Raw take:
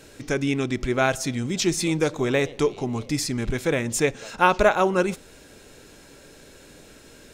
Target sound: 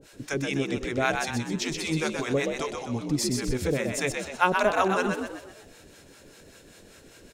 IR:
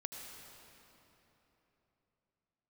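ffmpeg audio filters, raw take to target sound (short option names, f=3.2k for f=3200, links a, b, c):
-filter_complex "[0:a]acrossover=split=640[a][b];[a]aeval=exprs='val(0)*(1-1/2+1/2*cos(2*PI*5.1*n/s))':c=same[c];[b]aeval=exprs='val(0)*(1-1/2-1/2*cos(2*PI*5.1*n/s))':c=same[d];[c][d]amix=inputs=2:normalize=0,asplit=2[e][f];[f]asplit=6[g][h][i][j][k][l];[g]adelay=126,afreqshift=58,volume=-5dB[m];[h]adelay=252,afreqshift=116,volume=-11.9dB[n];[i]adelay=378,afreqshift=174,volume=-18.9dB[o];[j]adelay=504,afreqshift=232,volume=-25.8dB[p];[k]adelay=630,afreqshift=290,volume=-32.7dB[q];[l]adelay=756,afreqshift=348,volume=-39.7dB[r];[m][n][o][p][q][r]amix=inputs=6:normalize=0[s];[e][s]amix=inputs=2:normalize=0"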